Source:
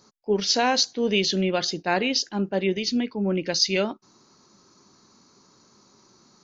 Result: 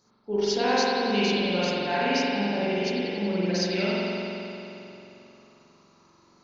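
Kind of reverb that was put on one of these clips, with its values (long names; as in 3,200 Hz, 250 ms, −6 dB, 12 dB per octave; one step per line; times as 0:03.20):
spring reverb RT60 3.1 s, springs 44 ms, chirp 50 ms, DRR −9.5 dB
level −9.5 dB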